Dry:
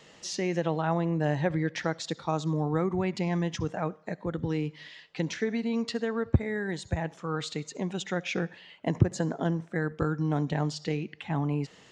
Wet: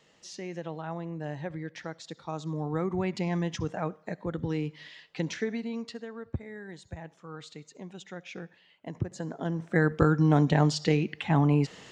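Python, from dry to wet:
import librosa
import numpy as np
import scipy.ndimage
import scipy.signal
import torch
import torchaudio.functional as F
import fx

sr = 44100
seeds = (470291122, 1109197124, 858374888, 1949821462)

y = fx.gain(x, sr, db=fx.line((2.07, -9.0), (2.99, -1.0), (5.4, -1.0), (6.1, -11.0), (8.91, -11.0), (9.52, -3.0), (9.75, 6.0)))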